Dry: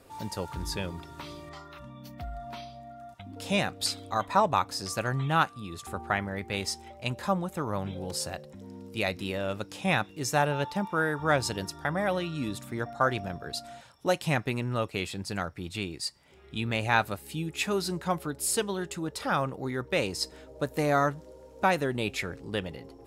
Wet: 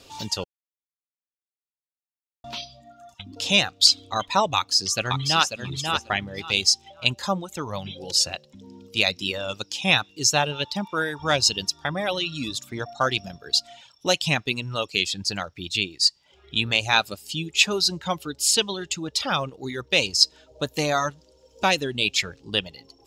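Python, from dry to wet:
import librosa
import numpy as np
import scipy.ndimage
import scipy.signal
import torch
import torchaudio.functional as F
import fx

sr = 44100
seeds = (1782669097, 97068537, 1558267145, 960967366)

y = fx.echo_throw(x, sr, start_s=4.56, length_s=1.03, ms=540, feedback_pct=25, wet_db=-4.5)
y = fx.edit(y, sr, fx.silence(start_s=0.44, length_s=2.0), tone=tone)
y = fx.dereverb_blind(y, sr, rt60_s=1.3)
y = fx.band_shelf(y, sr, hz=4300.0, db=13.0, octaves=1.7)
y = y * 10.0 ** (2.5 / 20.0)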